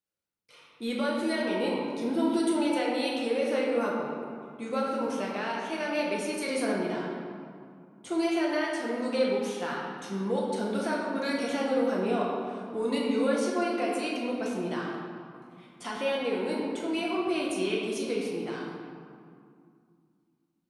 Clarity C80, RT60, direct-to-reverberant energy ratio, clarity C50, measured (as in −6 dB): 1.5 dB, 2.3 s, −4.0 dB, 0.0 dB